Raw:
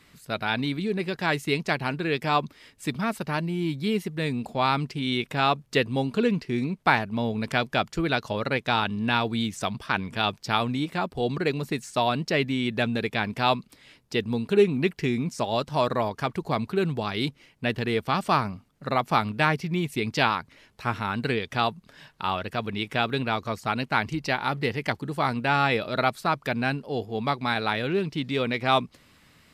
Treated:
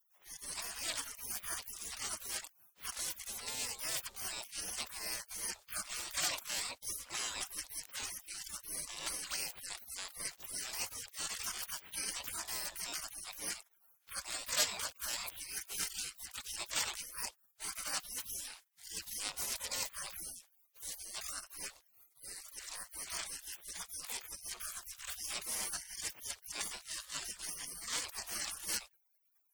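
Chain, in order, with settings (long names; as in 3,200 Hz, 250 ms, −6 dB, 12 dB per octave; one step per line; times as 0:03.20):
flat-topped bell 5,300 Hz +12 dB
pitch-shifted copies added +12 semitones −2 dB
gate on every frequency bin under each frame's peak −30 dB weak
level +4 dB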